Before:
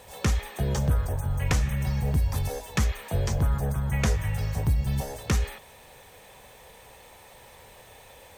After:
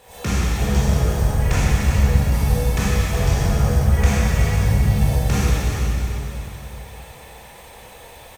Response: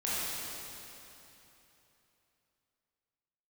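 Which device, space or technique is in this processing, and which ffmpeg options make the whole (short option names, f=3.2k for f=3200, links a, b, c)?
cave: -filter_complex "[0:a]aecho=1:1:373:0.355[a];[1:a]atrim=start_sample=2205[b];[a][b]afir=irnorm=-1:irlink=0"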